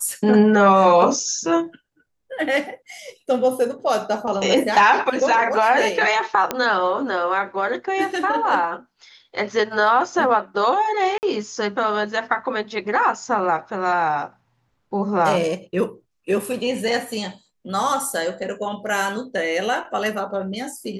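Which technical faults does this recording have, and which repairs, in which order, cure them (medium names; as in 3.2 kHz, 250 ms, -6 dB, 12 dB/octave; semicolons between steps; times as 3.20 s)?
6.51 s: pop -6 dBFS
11.18–11.23 s: dropout 49 ms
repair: de-click; interpolate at 11.18 s, 49 ms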